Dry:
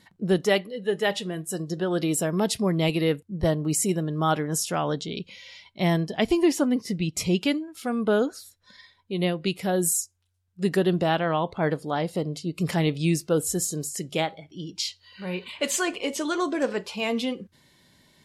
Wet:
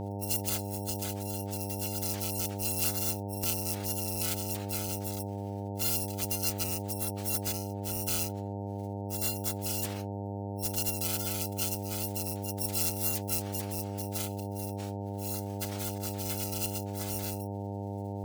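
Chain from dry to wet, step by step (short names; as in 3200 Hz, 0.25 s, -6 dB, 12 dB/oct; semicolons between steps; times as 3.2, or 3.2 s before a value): FFT order left unsorted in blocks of 256 samples; pre-emphasis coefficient 0.8; spectral gate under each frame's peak -25 dB weak; wow and flutter 22 cents; buzz 100 Hz, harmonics 9, -38 dBFS -4 dB/oct; gain +1.5 dB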